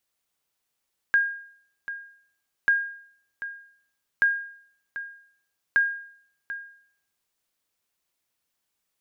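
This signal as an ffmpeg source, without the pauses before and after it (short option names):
-f lavfi -i "aevalsrc='0.211*(sin(2*PI*1620*mod(t,1.54))*exp(-6.91*mod(t,1.54)/0.6)+0.211*sin(2*PI*1620*max(mod(t,1.54)-0.74,0))*exp(-6.91*max(mod(t,1.54)-0.74,0)/0.6))':d=6.16:s=44100"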